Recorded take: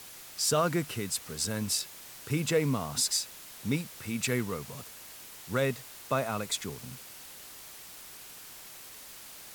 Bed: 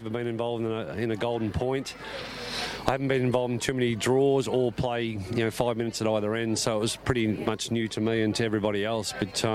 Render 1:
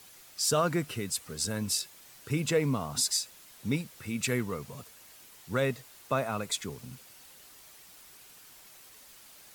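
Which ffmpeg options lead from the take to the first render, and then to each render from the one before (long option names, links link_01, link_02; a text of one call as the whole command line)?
ffmpeg -i in.wav -af "afftdn=noise_reduction=7:noise_floor=-48" out.wav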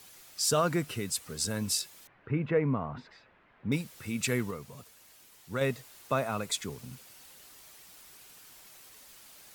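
ffmpeg -i in.wav -filter_complex "[0:a]asettb=1/sr,asplit=3[link_01][link_02][link_03];[link_01]atrim=end=2.074[link_04];[link_02]atrim=start=2.07:end=3.72,asetpts=PTS-STARTPTS,afade=type=in:duration=0.004:curve=qsin,afade=type=out:start_time=1.646:duration=0.004:curve=qsin,lowpass=frequency=2100:width=0.5412,lowpass=frequency=2100:width=1.3066[link_05];[link_03]atrim=start=3.716[link_06];[link_04][link_05]acrossfade=duration=0.004:curve1=hsin:curve2=qsin[link_07];[link_07][link_06]acrossfade=duration=0.004:curve1=qsin:curve2=hsin,asplit=3[link_08][link_09][link_10];[link_08]atrim=end=4.512[link_11];[link_09]atrim=start=4.508:end=5.612,asetpts=PTS-STARTPTS,volume=-4dB[link_12];[link_10]atrim=start=5.608[link_13];[link_11][link_12]acrossfade=duration=0.004:curve1=hsin:curve2=hsin[link_14];[link_14][link_13]acrossfade=duration=0.004:curve1=hsin:curve2=hsin" out.wav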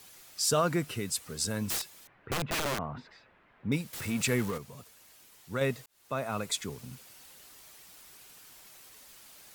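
ffmpeg -i in.wav -filter_complex "[0:a]asettb=1/sr,asplit=3[link_01][link_02][link_03];[link_01]atrim=end=1.684[link_04];[link_02]atrim=start=1.68:end=2.79,asetpts=PTS-STARTPTS,afade=type=in:duration=0.004:curve=qsin,afade=type=out:start_time=1.106:duration=0.004:curve=qsin,aeval=exprs='(mod(20*val(0)+1,2)-1)/20':channel_layout=same[link_05];[link_03]atrim=start=2.786[link_06];[link_04][link_05]acrossfade=duration=0.004:curve1=hsin:curve2=qsin[link_07];[link_07][link_06]acrossfade=duration=0.004:curve1=qsin:curve2=hsin,asettb=1/sr,asplit=3[link_08][link_09][link_10];[link_08]atrim=end=3.934[link_11];[link_09]atrim=start=3.93:end=4.58,asetpts=PTS-STARTPTS,afade=type=in:duration=0.004:curve=qsin,afade=type=out:start_time=0.646:duration=0.004:curve=qsin,aeval=exprs='val(0)+0.5*0.0158*sgn(val(0))':channel_layout=same[link_12];[link_10]atrim=start=4.576[link_13];[link_11][link_12]acrossfade=duration=0.004:curve1=hsin:curve2=qsin[link_14];[link_14][link_13]acrossfade=duration=0.004:curve1=qsin:curve2=hsin,asplit=2[link_15][link_16];[link_15]atrim=end=5.86,asetpts=PTS-STARTPTS,afade=type=out:start_time=5.856:duration=0.004:curve=hsin[link_17];[link_16]atrim=start=5.86,asetpts=PTS-STARTPTS,afade=type=in:duration=0.51[link_18];[link_17][link_18]concat=n=2:v=0:a=1" out.wav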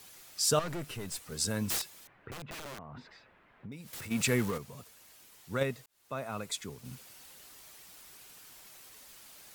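ffmpeg -i in.wav -filter_complex "[0:a]asettb=1/sr,asplit=3[link_01][link_02][link_03];[link_01]atrim=end=0.594[link_04];[link_02]atrim=start=0.59:end=1.32,asetpts=PTS-STARTPTS,afade=type=in:duration=0.004:curve=qsin,afade=type=out:start_time=0.726:duration=0.004:curve=qsin,aeval=exprs='(tanh(56.2*val(0)+0.4)-tanh(0.4))/56.2':channel_layout=same[link_05];[link_03]atrim=start=1.316[link_06];[link_04][link_05]acrossfade=duration=0.004:curve1=hsin:curve2=qsin[link_07];[link_07][link_06]acrossfade=duration=0.004:curve1=qsin:curve2=hsin,asplit=3[link_08][link_09][link_10];[link_08]afade=type=out:start_time=2.29:duration=0.02[link_11];[link_09]acompressor=threshold=-42dB:ratio=6:attack=3.2:release=140:knee=1:detection=peak,afade=type=in:start_time=2.29:duration=0.02,afade=type=out:start_time=4.1:duration=0.02[link_12];[link_10]afade=type=in:start_time=4.1:duration=0.02[link_13];[link_11][link_12][link_13]amix=inputs=3:normalize=0,asplit=3[link_14][link_15][link_16];[link_14]atrim=end=5.632[link_17];[link_15]atrim=start=5.628:end=6.852,asetpts=PTS-STARTPTS,volume=-4.5dB[link_18];[link_16]atrim=start=6.848[link_19];[link_17][link_18]acrossfade=duration=0.004:curve1=hsin:curve2=hsin[link_20];[link_20][link_19]acrossfade=duration=0.004:curve1=hsin:curve2=hsin" out.wav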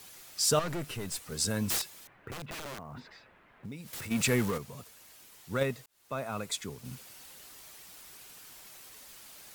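ffmpeg -i in.wav -filter_complex "[0:a]asplit=2[link_01][link_02];[link_02]asoftclip=type=hard:threshold=-31.5dB,volume=-10dB[link_03];[link_01][link_03]amix=inputs=2:normalize=0,acrusher=bits=7:mode=log:mix=0:aa=0.000001" out.wav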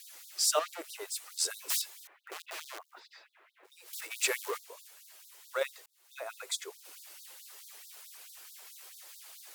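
ffmpeg -i in.wav -af "afftfilt=real='re*gte(b*sr/1024,300*pow(3600/300,0.5+0.5*sin(2*PI*4.6*pts/sr)))':imag='im*gte(b*sr/1024,300*pow(3600/300,0.5+0.5*sin(2*PI*4.6*pts/sr)))':win_size=1024:overlap=0.75" out.wav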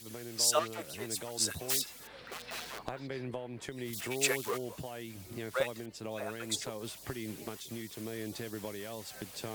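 ffmpeg -i in.wav -i bed.wav -filter_complex "[1:a]volume=-15dB[link_01];[0:a][link_01]amix=inputs=2:normalize=0" out.wav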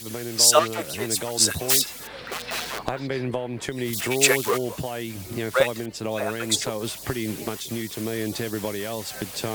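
ffmpeg -i in.wav -af "volume=12dB,alimiter=limit=-3dB:level=0:latency=1" out.wav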